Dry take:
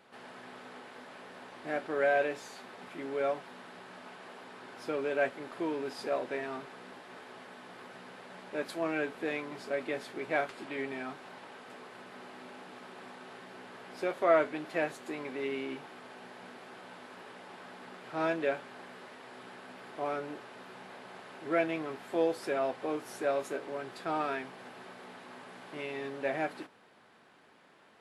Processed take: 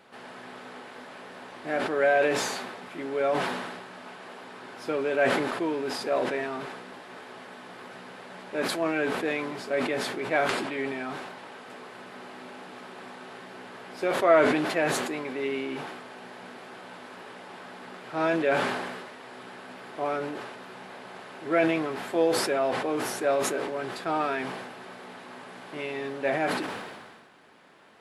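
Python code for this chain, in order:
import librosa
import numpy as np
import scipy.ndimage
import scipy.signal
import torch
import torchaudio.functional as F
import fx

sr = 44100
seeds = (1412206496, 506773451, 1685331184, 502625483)

y = fx.sustainer(x, sr, db_per_s=37.0)
y = y * librosa.db_to_amplitude(5.0)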